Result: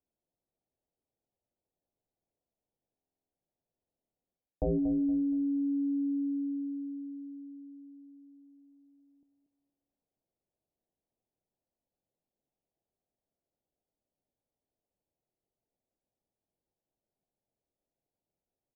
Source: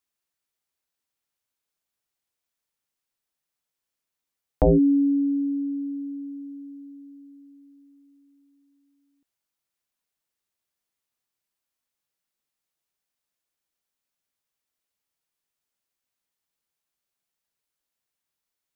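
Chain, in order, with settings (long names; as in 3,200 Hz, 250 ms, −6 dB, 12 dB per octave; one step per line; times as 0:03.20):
Butterworth low-pass 760 Hz 36 dB per octave
reversed playback
downward compressor 10 to 1, threshold −33 dBFS, peak gain reduction 18 dB
reversed playback
repeating echo 234 ms, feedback 33%, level −11 dB
on a send at −17 dB: convolution reverb RT60 1.3 s, pre-delay 5 ms
on the sum: buffer that repeats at 0:02.94, samples 2,048, times 7
level +5.5 dB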